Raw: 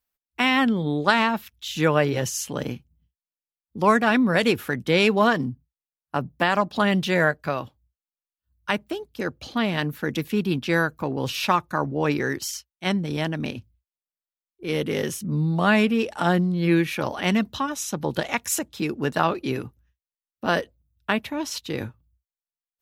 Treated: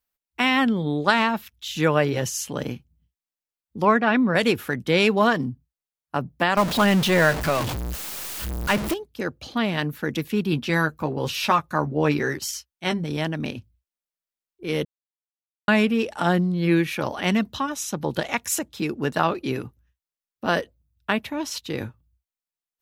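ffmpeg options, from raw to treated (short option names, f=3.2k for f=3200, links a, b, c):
-filter_complex "[0:a]asplit=3[a][b][c];[a]afade=t=out:st=3.84:d=0.02[d];[b]highpass=110,lowpass=3.2k,afade=t=in:st=3.84:d=0.02,afade=t=out:st=4.34:d=0.02[e];[c]afade=t=in:st=4.34:d=0.02[f];[d][e][f]amix=inputs=3:normalize=0,asettb=1/sr,asplit=3[g][h][i];[g]atrim=end=6.574[j];[h]atrim=start=6.57:end=8.94,asetpts=PTS-STARTPTS,afade=t=in:d=0.004:c=qsin,afade=t=out:st=2.366:d=0.004:c=qsin,aeval=exprs='val(0)+0.5*0.0794*sgn(val(0))':c=same[k];[i]atrim=start=8.936[l];[j][k]acrossfade=d=0.004:c1=hsin:c2=qsin[m];[m][l]acrossfade=d=0.004:c1=qsin:c2=hsin,asettb=1/sr,asplit=3[n][o][p];[n]atrim=end=10.514[q];[o]atrim=start=10.51:end=13.04,asetpts=PTS-STARTPTS,afade=t=in:d=0.004:c=qsin,afade=t=out:st=2.526:d=0.004:c=qsin,asplit=2[r][s];[s]adelay=13,volume=-6.5dB[t];[r][t]amix=inputs=2:normalize=0,atrim=end_sample=111573[u];[p]atrim=start=13.036[v];[q][u]acrossfade=d=0.004:c1=hsin:c2=qsin[w];[w][v]acrossfade=d=0.004:c1=qsin:c2=hsin,asplit=3[x][y][z];[x]atrim=end=14.85,asetpts=PTS-STARTPTS,afade=t=out:st=14.846:d=0.004:c=hsin[aa];[y]atrim=start=14.85:end=15.68,asetpts=PTS-STARTPTS,volume=0[ab];[z]atrim=start=15.68,asetpts=PTS-STARTPTS,afade=t=in:d=0.004:c=hsin[ac];[aa][ab][ac]concat=n=3:v=0:a=1"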